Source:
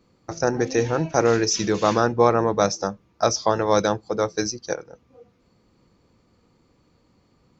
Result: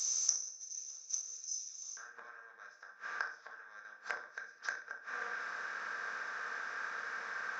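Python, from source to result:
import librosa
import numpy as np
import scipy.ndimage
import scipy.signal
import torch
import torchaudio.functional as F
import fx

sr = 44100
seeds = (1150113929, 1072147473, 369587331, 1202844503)

y = fx.bin_compress(x, sr, power=0.4)
y = fx.tilt_eq(y, sr, slope=3.0)
y = fx.gate_flip(y, sr, shuts_db=-8.0, range_db=-29)
y = fx.bandpass_q(y, sr, hz=fx.steps((0.0, 6200.0), (1.97, 1600.0)), q=12.0)
y = fx.echo_feedback(y, sr, ms=66, feedback_pct=34, wet_db=-12)
y = fx.room_shoebox(y, sr, seeds[0], volume_m3=320.0, walls='furnished', distance_m=1.6)
y = fx.doppler_dist(y, sr, depth_ms=0.33)
y = y * 10.0 ** (5.5 / 20.0)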